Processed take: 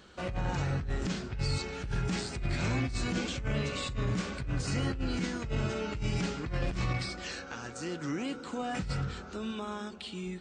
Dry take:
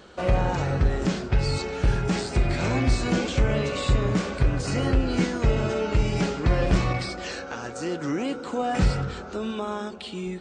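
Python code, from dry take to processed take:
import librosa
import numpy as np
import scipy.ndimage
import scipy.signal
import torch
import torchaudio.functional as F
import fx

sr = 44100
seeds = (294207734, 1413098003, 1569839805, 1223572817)

y = fx.peak_eq(x, sr, hz=570.0, db=-7.0, octaves=1.8)
y = fx.over_compress(y, sr, threshold_db=-25.0, ratio=-1.0)
y = y * 10.0 ** (-6.0 / 20.0)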